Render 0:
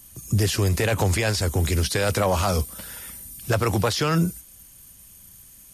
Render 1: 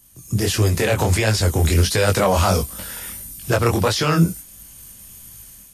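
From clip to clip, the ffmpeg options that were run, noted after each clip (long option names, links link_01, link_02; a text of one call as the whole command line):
ffmpeg -i in.wav -af "dynaudnorm=framelen=130:gausssize=5:maxgain=11dB,flanger=delay=18:depth=7.8:speed=1.5,volume=-1dB" out.wav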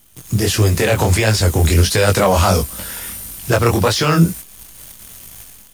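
ffmpeg -i in.wav -af "acrusher=bits=7:dc=4:mix=0:aa=0.000001,volume=3.5dB" out.wav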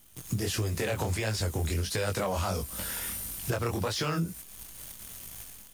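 ffmpeg -i in.wav -af "acompressor=threshold=-21dB:ratio=6,volume=-6.5dB" out.wav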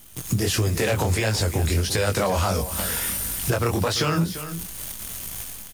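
ffmpeg -i in.wav -filter_complex "[0:a]aecho=1:1:343:0.211,asplit=2[link_01][link_02];[link_02]alimiter=level_in=3dB:limit=-24dB:level=0:latency=1:release=415,volume=-3dB,volume=-2dB[link_03];[link_01][link_03]amix=inputs=2:normalize=0,volume=5dB" out.wav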